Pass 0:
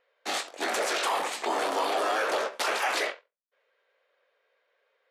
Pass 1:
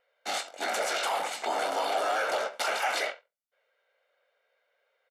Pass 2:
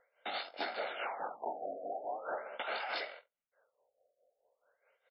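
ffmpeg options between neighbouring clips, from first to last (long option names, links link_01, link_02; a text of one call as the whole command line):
ffmpeg -i in.wav -af "aecho=1:1:1.4:0.46,volume=-2.5dB" out.wav
ffmpeg -i in.wav -af "tremolo=f=4.7:d=0.71,acompressor=threshold=-38dB:ratio=12,afftfilt=real='re*lt(b*sr/1024,730*pow(5500/730,0.5+0.5*sin(2*PI*0.42*pts/sr)))':imag='im*lt(b*sr/1024,730*pow(5500/730,0.5+0.5*sin(2*PI*0.42*pts/sr)))':win_size=1024:overlap=0.75,volume=3.5dB" out.wav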